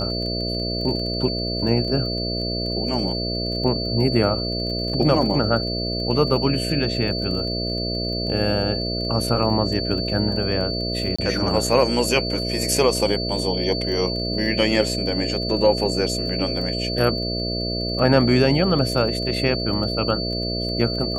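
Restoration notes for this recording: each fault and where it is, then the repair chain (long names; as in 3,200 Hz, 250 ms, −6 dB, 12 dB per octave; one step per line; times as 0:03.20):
mains buzz 60 Hz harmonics 11 −27 dBFS
surface crackle 21 per second −30 dBFS
whistle 4,500 Hz −27 dBFS
0:11.16–0:11.19: drop-out 25 ms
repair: click removal
hum removal 60 Hz, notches 11
notch filter 4,500 Hz, Q 30
repair the gap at 0:11.16, 25 ms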